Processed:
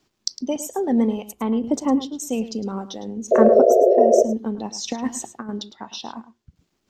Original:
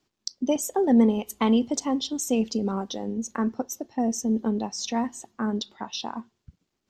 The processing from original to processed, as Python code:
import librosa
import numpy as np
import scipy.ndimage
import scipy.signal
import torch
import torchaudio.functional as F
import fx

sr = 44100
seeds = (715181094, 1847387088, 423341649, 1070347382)

y = fx.peak_eq(x, sr, hz=4800.0, db=-12.5, octaves=2.5, at=(1.32, 2.2))
y = fx.over_compress(y, sr, threshold_db=-29.0, ratio=-0.5, at=(4.55, 5.49))
y = fx.chopper(y, sr, hz=0.61, depth_pct=60, duty_pct=25)
y = fx.spec_paint(y, sr, seeds[0], shape='noise', start_s=3.31, length_s=0.92, low_hz=350.0, high_hz=710.0, level_db=-21.0)
y = y + 10.0 ** (-14.0 / 20.0) * np.pad(y, (int(107 * sr / 1000.0), 0))[:len(y)]
y = y * 10.0 ** (7.0 / 20.0)